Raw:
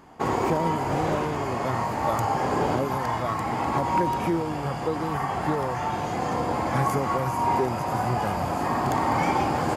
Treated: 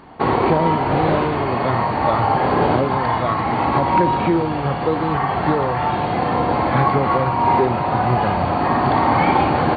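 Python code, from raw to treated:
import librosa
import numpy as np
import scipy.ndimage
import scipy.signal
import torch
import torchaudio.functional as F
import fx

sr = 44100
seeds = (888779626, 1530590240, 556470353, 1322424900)

p1 = fx.brickwall_lowpass(x, sr, high_hz=4600.0)
p2 = p1 + fx.room_flutter(p1, sr, wall_m=9.7, rt60_s=0.26, dry=0)
y = p2 * 10.0 ** (7.5 / 20.0)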